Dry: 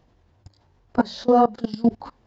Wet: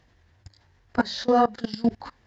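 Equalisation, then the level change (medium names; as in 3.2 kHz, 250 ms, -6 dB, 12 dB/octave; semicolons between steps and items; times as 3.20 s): peaking EQ 71 Hz +6 dB 1.4 oct; peaking EQ 1.8 kHz +9.5 dB 0.66 oct; peaking EQ 5.5 kHz +8.5 dB 2.8 oct; -4.5 dB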